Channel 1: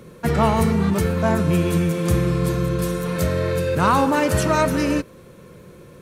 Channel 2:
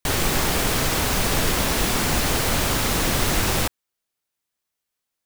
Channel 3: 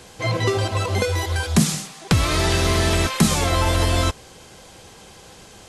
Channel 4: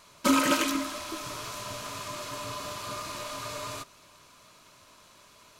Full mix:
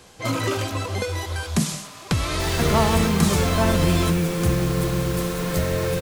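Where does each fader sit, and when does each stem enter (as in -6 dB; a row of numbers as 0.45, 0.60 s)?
-2.0, -11.5, -5.0, -5.0 dB; 2.35, 2.35, 0.00, 0.00 s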